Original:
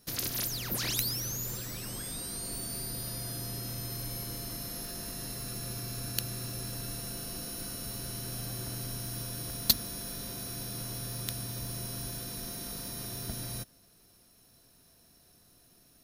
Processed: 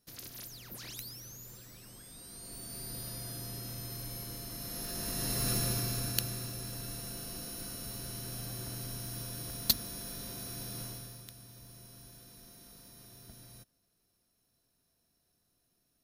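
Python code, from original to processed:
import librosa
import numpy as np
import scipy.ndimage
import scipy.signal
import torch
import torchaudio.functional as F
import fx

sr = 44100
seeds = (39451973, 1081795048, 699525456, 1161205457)

y = fx.gain(x, sr, db=fx.line((2.08, -13.0), (2.95, -4.0), (4.51, -4.0), (5.51, 8.0), (6.56, -3.0), (10.84, -3.0), (11.31, -15.0)))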